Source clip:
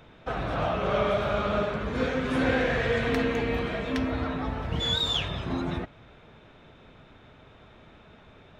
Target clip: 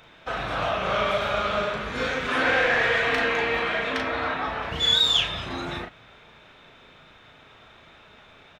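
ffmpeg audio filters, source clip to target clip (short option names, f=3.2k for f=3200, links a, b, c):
-filter_complex "[0:a]tiltshelf=f=710:g=-6.5,asettb=1/sr,asplit=3[a][b][c];[a]atrim=end=2.284[d];[b]atrim=start=2.28:end=4.71,asetpts=PTS-STARTPTS,afade=t=in:d=0.004:c=qsin,afade=t=out:st=2.426:d=0.004:c=qsin,asplit=2[e][f];[f]highpass=f=720:p=1,volume=13dB,asoftclip=type=tanh:threshold=-11dB[g];[e][g]amix=inputs=2:normalize=0,lowpass=f=1.7k:p=1,volume=-6dB[h];[c]atrim=start=4.706[i];[d][h]acrossfade=d=0.004:c1=hsin:c2=qsin[j];[j][i]acrossfade=d=0.004:c1=qsin:c2=hsin,asplit=2[k][l];[l]adelay=37,volume=-4.5dB[m];[k][m]amix=inputs=2:normalize=0"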